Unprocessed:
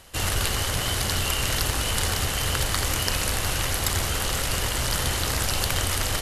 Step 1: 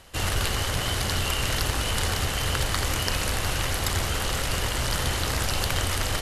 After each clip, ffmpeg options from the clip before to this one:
-af "highshelf=f=6400:g=-6"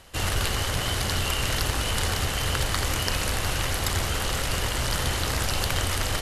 -af anull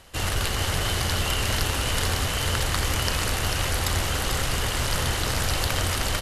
-af "aecho=1:1:444:0.531"

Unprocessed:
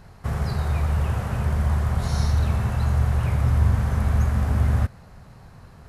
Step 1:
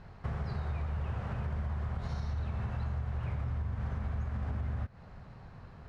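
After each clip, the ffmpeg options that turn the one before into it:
-af "lowpass=3700,alimiter=limit=0.168:level=0:latency=1:release=142,acompressor=threshold=0.0316:ratio=3,volume=0.631"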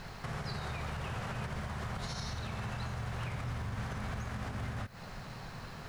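-af "crystalizer=i=6:c=0,equalizer=f=68:t=o:w=0.69:g=-13,alimiter=level_in=3.76:limit=0.0631:level=0:latency=1:release=151,volume=0.266,volume=2"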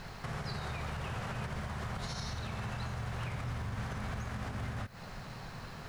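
-af anull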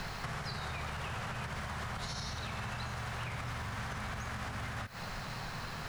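-filter_complex "[0:a]acrossover=split=180|750[s0][s1][s2];[s0]acompressor=threshold=0.00251:ratio=4[s3];[s1]acompressor=threshold=0.001:ratio=4[s4];[s2]acompressor=threshold=0.00355:ratio=4[s5];[s3][s4][s5]amix=inputs=3:normalize=0,volume=2.66"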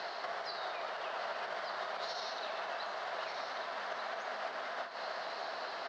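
-filter_complex "[0:a]flanger=delay=5.8:depth=7.9:regen=66:speed=1.9:shape=sinusoidal,highpass=f=350:w=0.5412,highpass=f=350:w=1.3066,equalizer=f=650:t=q:w=4:g=10,equalizer=f=2400:t=q:w=4:g=-6,equalizer=f=4500:t=q:w=4:g=3,lowpass=f=4900:w=0.5412,lowpass=f=4900:w=1.3066,asplit=2[s0][s1];[s1]aecho=0:1:1189:0.447[s2];[s0][s2]amix=inputs=2:normalize=0,volume=1.68"

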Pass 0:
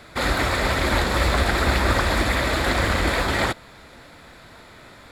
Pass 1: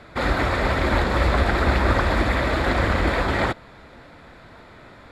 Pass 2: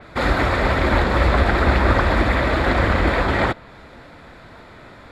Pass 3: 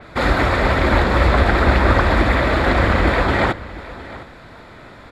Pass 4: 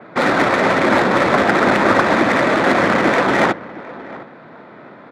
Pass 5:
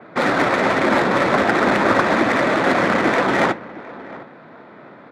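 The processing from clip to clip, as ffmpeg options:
-af "lowpass=f=1900:p=1,volume=1.19"
-af "adynamicequalizer=threshold=0.00708:dfrequency=4400:dqfactor=0.7:tfrequency=4400:tqfactor=0.7:attack=5:release=100:ratio=0.375:range=2.5:mode=cutabove:tftype=highshelf,volume=1.41"
-af "aecho=1:1:711:0.133,volume=1.26"
-af "highpass=f=160:w=0.5412,highpass=f=160:w=1.3066,adynamicsmooth=sensitivity=1.5:basefreq=1800,volume=1.5"
-af "flanger=delay=2.6:depth=4.7:regen=-80:speed=1.3:shape=sinusoidal,volume=1.26"

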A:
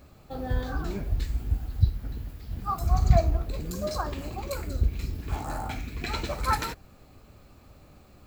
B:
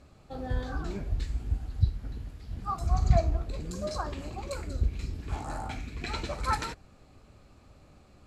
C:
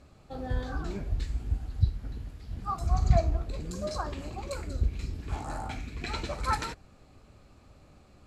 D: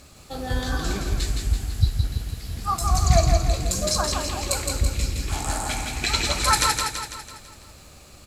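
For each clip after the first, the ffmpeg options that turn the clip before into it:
-af "lowpass=f=10000:w=0.5412,lowpass=f=10000:w=1.3066,volume=0.708"
-af anull
-filter_complex "[0:a]crystalizer=i=6:c=0,asplit=2[s0][s1];[s1]aecho=0:1:166|332|498|664|830|996|1162:0.631|0.328|0.171|0.0887|0.0461|0.024|0.0125[s2];[s0][s2]amix=inputs=2:normalize=0,volume=1.68"

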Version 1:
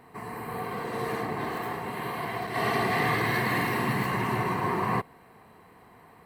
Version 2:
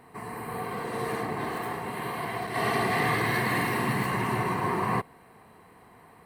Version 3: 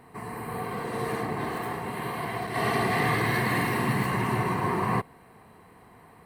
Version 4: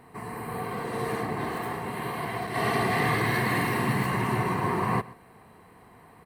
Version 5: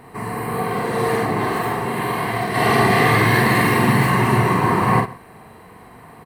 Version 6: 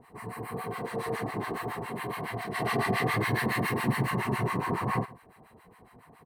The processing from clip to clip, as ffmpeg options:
-af "equalizer=f=9100:w=7.8:g=10.5"
-af "lowshelf=f=210:g=4"
-af "aecho=1:1:127:0.1"
-filter_complex "[0:a]asplit=2[s0][s1];[s1]adelay=44,volume=0.631[s2];[s0][s2]amix=inputs=2:normalize=0,volume=2.66"
-filter_complex "[0:a]acrossover=split=850[s0][s1];[s0]aeval=exprs='val(0)*(1-1/2+1/2*cos(2*PI*7.2*n/s))':c=same[s2];[s1]aeval=exprs='val(0)*(1-1/2-1/2*cos(2*PI*7.2*n/s))':c=same[s3];[s2][s3]amix=inputs=2:normalize=0,volume=0.398"

